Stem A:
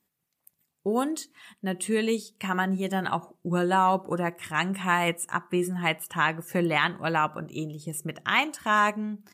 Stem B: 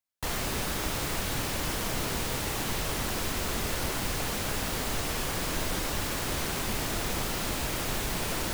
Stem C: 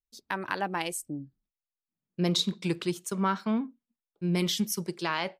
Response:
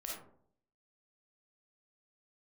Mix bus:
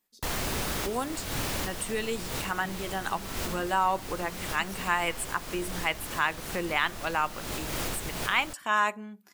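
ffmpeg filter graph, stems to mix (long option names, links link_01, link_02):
-filter_complex "[0:a]highpass=frequency=520:poles=1,volume=-2dB,asplit=2[link_01][link_02];[1:a]volume=-0.5dB,asplit=2[link_03][link_04];[link_04]volume=-15.5dB[link_05];[2:a]acompressor=threshold=-38dB:ratio=6,volume=-8dB,asplit=2[link_06][link_07];[link_07]volume=-11dB[link_08];[link_02]apad=whole_len=376218[link_09];[link_03][link_09]sidechaincompress=threshold=-42dB:ratio=8:attack=24:release=245[link_10];[3:a]atrim=start_sample=2205[link_11];[link_05][link_08]amix=inputs=2:normalize=0[link_12];[link_12][link_11]afir=irnorm=-1:irlink=0[link_13];[link_01][link_10][link_06][link_13]amix=inputs=4:normalize=0"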